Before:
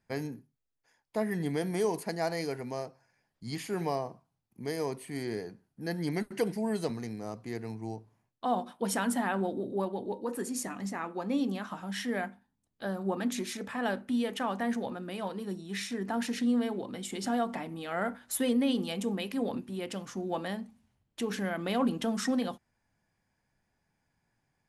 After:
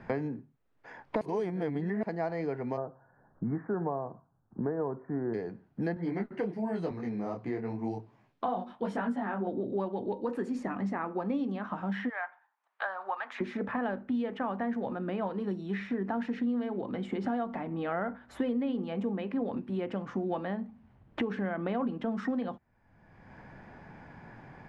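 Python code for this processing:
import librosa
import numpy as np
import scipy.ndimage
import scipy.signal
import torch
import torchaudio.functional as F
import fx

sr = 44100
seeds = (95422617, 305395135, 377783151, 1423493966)

y = fx.steep_lowpass(x, sr, hz=1600.0, slope=72, at=(2.76, 5.33), fade=0.02)
y = fx.detune_double(y, sr, cents=34, at=(5.94, 9.47))
y = fx.highpass(y, sr, hz=880.0, slope=24, at=(12.08, 13.4), fade=0.02)
y = fx.edit(y, sr, fx.reverse_span(start_s=1.21, length_s=0.82), tone=tone)
y = scipy.signal.sosfilt(scipy.signal.butter(2, 1700.0, 'lowpass', fs=sr, output='sos'), y)
y = fx.band_squash(y, sr, depth_pct=100)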